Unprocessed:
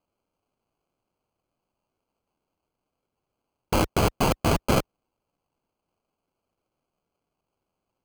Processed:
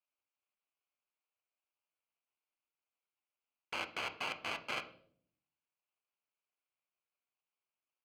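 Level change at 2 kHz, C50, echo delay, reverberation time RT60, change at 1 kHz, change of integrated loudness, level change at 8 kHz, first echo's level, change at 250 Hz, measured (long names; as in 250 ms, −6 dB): −6.5 dB, 13.0 dB, no echo audible, 0.60 s, −16.0 dB, −15.5 dB, −20.5 dB, no echo audible, −28.0 dB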